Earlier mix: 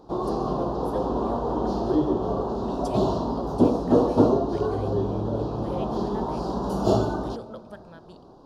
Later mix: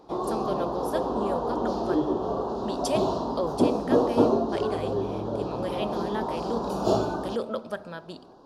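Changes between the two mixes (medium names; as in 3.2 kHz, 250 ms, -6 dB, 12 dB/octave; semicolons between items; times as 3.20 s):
speech +11.5 dB; master: add bass shelf 200 Hz -10 dB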